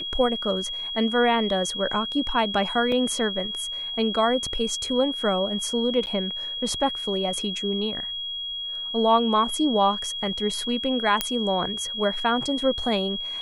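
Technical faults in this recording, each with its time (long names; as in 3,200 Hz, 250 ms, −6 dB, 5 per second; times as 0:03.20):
whistle 3,300 Hz −29 dBFS
0:02.92: drop-out 2.3 ms
0:06.06–0:06.07: drop-out 9.6 ms
0:11.21: click −5 dBFS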